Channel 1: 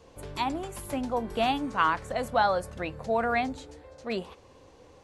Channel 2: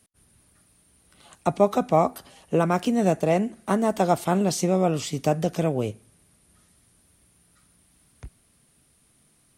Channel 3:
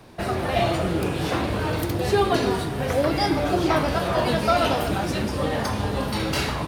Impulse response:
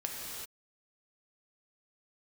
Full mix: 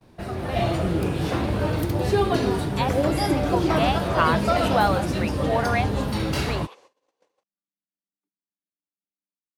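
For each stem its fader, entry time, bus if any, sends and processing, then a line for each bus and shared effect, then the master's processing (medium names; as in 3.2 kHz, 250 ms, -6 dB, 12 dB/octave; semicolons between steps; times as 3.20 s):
-3.0 dB, 2.40 s, no send, high-pass 440 Hz 12 dB/octave
-17.0 dB, 0.00 s, no send, vocoder on a held chord bare fifth, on G3
-9.5 dB, 0.00 s, no send, bass shelf 360 Hz +6.5 dB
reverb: none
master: gate -56 dBFS, range -26 dB; level rider gain up to 6 dB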